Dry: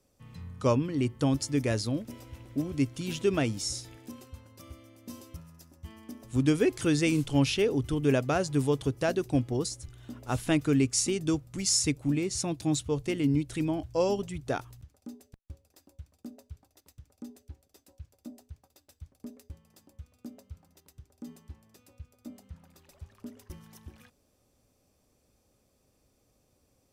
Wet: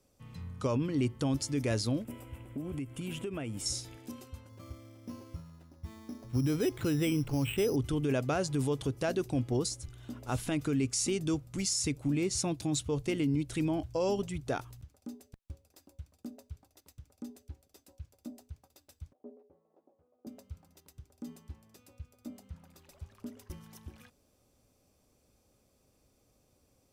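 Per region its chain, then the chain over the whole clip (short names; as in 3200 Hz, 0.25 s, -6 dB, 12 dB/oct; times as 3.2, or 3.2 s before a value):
2.04–3.66 band shelf 4900 Hz -12 dB 1 oct + compressor 12:1, threshold -33 dBFS
4.49–7.76 bell 110 Hz +5 dB 0.42 oct + careless resampling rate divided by 8×, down filtered, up hold
19.13–20.27 Butterworth band-pass 530 Hz, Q 1.1 + doubler 12 ms -5 dB
whole clip: notch 1800 Hz, Q 25; limiter -22 dBFS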